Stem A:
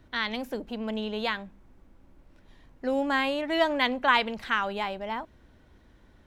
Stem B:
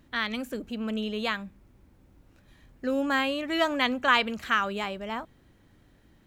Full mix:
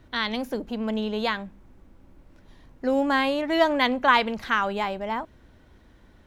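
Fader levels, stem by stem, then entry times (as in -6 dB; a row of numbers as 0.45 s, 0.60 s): +3.0 dB, -10.0 dB; 0.00 s, 0.00 s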